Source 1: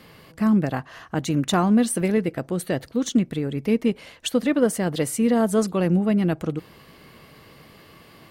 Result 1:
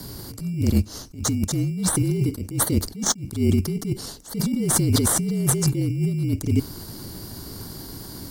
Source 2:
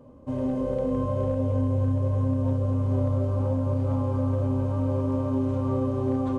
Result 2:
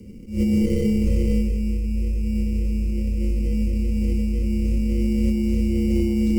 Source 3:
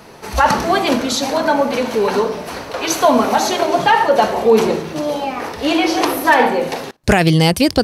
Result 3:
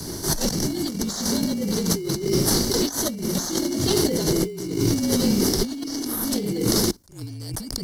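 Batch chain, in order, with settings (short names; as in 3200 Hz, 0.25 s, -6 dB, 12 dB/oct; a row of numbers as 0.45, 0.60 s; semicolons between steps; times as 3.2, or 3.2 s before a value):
Chebyshev band-stop 390–4800 Hz, order 3; high shelf 3300 Hz +10.5 dB; in parallel at -7 dB: sample-and-hold 17×; on the sum: negative-ratio compressor -26 dBFS, ratio -1; frequency shift -46 Hz; attack slew limiter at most 150 dB/s; match loudness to -23 LUFS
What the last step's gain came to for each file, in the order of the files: +5.0, +6.0, +1.0 dB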